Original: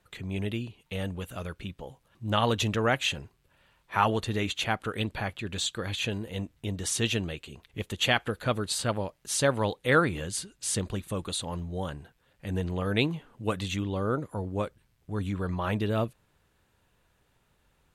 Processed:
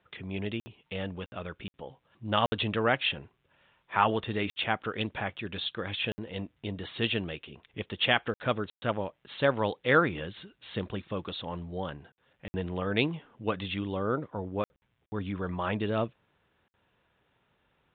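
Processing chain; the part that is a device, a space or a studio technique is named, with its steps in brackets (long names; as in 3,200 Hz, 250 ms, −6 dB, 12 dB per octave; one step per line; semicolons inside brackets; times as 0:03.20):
call with lost packets (high-pass filter 160 Hz 6 dB per octave; downsampling to 8,000 Hz; dropped packets of 60 ms)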